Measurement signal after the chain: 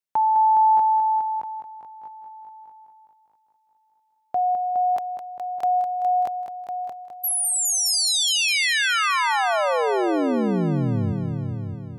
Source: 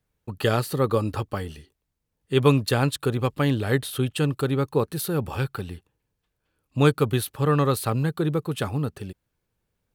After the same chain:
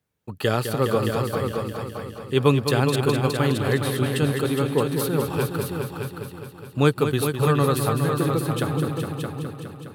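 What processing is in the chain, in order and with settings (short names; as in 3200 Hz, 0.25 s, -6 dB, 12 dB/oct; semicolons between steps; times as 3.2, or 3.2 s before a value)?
HPF 90 Hz; on a send: multi-head echo 0.207 s, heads all three, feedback 46%, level -8.5 dB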